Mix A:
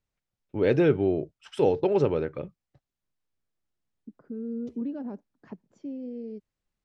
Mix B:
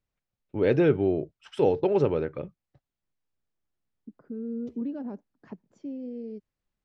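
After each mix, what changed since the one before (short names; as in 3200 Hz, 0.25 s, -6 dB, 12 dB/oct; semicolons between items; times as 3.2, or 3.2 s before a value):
first voice: add high shelf 6100 Hz -7 dB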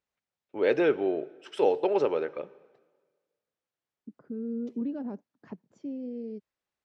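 first voice: add HPF 450 Hz 12 dB/oct; reverb: on, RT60 1.5 s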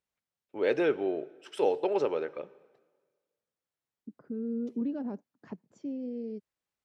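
first voice -3.0 dB; master: remove air absorption 53 m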